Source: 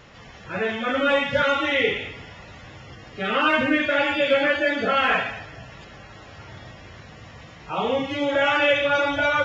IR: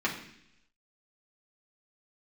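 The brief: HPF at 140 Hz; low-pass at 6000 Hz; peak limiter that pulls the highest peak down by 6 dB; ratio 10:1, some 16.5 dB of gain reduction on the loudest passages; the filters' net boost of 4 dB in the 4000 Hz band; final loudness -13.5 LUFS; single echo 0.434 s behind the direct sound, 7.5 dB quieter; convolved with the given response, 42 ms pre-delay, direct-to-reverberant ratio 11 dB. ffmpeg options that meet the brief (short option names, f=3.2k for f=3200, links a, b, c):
-filter_complex "[0:a]highpass=140,lowpass=6k,equalizer=f=4k:t=o:g=6,acompressor=threshold=-32dB:ratio=10,alimiter=level_in=4dB:limit=-24dB:level=0:latency=1,volume=-4dB,aecho=1:1:434:0.422,asplit=2[a][b];[1:a]atrim=start_sample=2205,adelay=42[c];[b][c]afir=irnorm=-1:irlink=0,volume=-20.5dB[d];[a][d]amix=inputs=2:normalize=0,volume=23dB"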